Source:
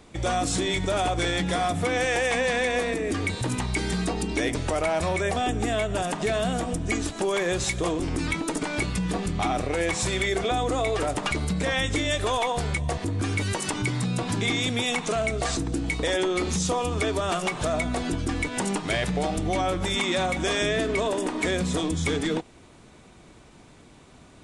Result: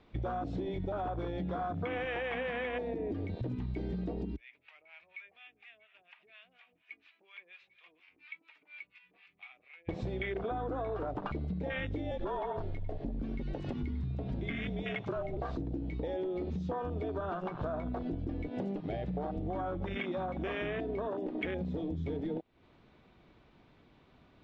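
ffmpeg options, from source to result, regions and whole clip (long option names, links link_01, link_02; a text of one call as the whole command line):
ffmpeg -i in.wav -filter_complex "[0:a]asettb=1/sr,asplit=3[link_01][link_02][link_03];[link_01]atrim=end=4.364[link_04];[link_02]atrim=start=4.36:end=9.89,asetpts=PTS-STARTPTS,afade=type=in:duration=0.004:curve=qsin,afade=type=out:start_time=5.526:duration=0.004:curve=qsin,acrossover=split=670[link_05][link_06];[link_05]aeval=exprs='val(0)*(1-1/2+1/2*cos(2*PI*4.2*n/s))':channel_layout=same[link_07];[link_06]aeval=exprs='val(0)*(1-1/2-1/2*cos(2*PI*4.2*n/s))':channel_layout=same[link_08];[link_07][link_08]amix=inputs=2:normalize=0,bandpass=frequency=2400:width_type=q:width=5.2[link_09];[link_03]atrim=start=9.886[link_10];[link_04][link_09]acrossfade=duration=0.004:curve1=hsin:curve2=qsin[link_11];[link_11][link_10]acrossfade=duration=0.004:curve1=qsin:curve2=hsin,asettb=1/sr,asplit=3[link_12][link_13][link_14];[link_12]atrim=end=12.114[link_15];[link_13]atrim=start=12.11:end=15.37,asetpts=PTS-STARTPTS,afade=type=in:duration=0.004:curve=qsin,afade=type=out:start_time=3.256:duration=0.004:curve=qsin,afreqshift=-53,aecho=1:1:98:0.237,atrim=end_sample=143766[link_16];[link_14]atrim=start=15.366[link_17];[link_15][link_16]acrossfade=duration=0.004:curve1=hsin:curve2=qsin[link_18];[link_18][link_17]acrossfade=duration=0.004:curve1=qsin:curve2=hsin,afwtdn=0.0501,lowpass=frequency=4000:width=0.5412,lowpass=frequency=4000:width=1.3066,acompressor=threshold=-40dB:ratio=6,volume=5.5dB" out.wav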